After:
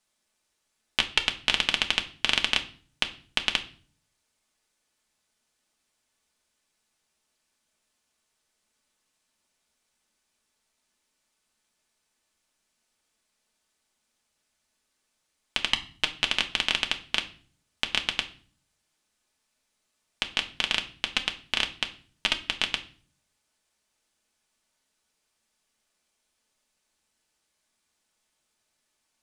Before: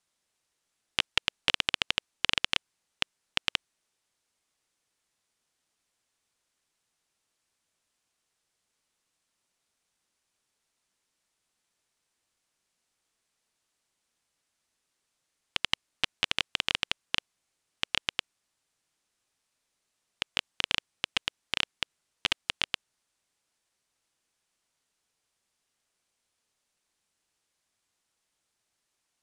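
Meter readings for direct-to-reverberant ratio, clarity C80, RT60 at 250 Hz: 3.5 dB, 19.0 dB, 0.75 s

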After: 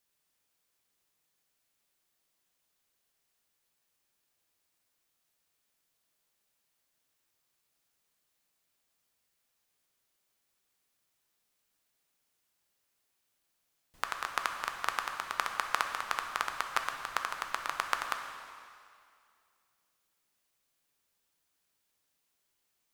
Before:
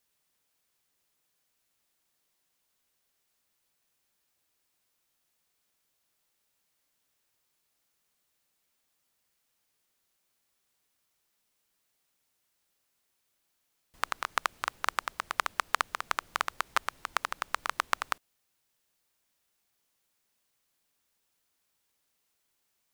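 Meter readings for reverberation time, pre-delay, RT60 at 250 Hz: 2.3 s, 4 ms, 2.3 s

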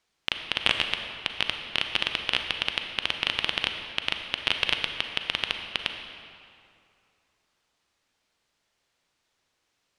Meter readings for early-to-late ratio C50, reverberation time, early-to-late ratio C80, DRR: 5.5 dB, 2.5 s, 7.0 dB, 5.0 dB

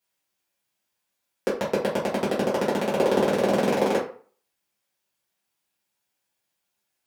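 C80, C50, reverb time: 11.5 dB, 7.0 dB, 0.45 s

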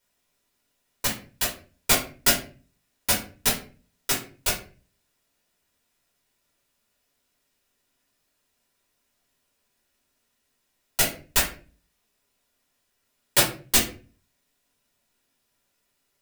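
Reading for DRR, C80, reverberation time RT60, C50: -5.0 dB, 14.0 dB, 0.40 s, 8.0 dB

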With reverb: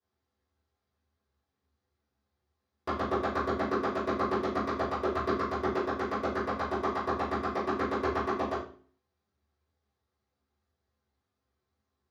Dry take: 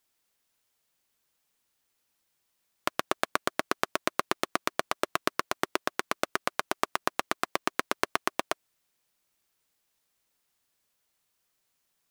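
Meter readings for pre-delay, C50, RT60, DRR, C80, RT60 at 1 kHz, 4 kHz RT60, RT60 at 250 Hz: 3 ms, 4.0 dB, 0.45 s, -15.5 dB, 9.5 dB, 0.40 s, 0.40 s, 0.75 s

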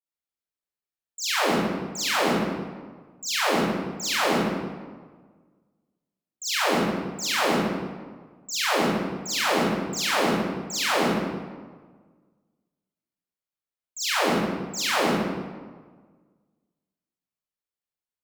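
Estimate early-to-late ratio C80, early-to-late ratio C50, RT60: 0.0 dB, -4.0 dB, 1.5 s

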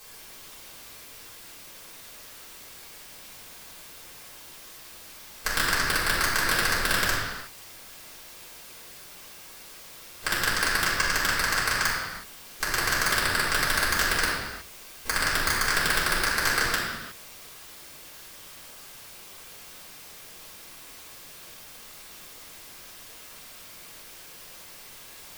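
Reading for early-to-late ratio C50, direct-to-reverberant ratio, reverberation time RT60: 0.0 dB, -9.5 dB, no single decay rate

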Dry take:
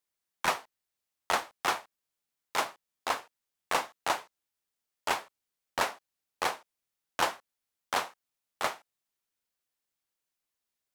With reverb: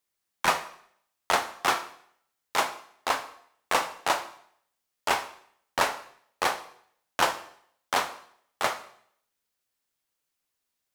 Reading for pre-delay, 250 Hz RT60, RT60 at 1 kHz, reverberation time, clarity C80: 5 ms, 0.65 s, 0.60 s, 0.65 s, 16.0 dB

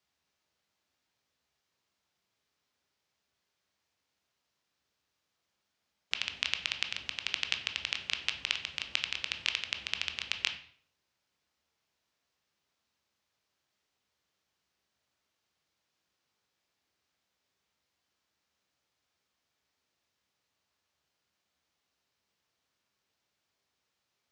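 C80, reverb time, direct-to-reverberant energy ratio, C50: 14.0 dB, 0.55 s, 5.5 dB, 10.5 dB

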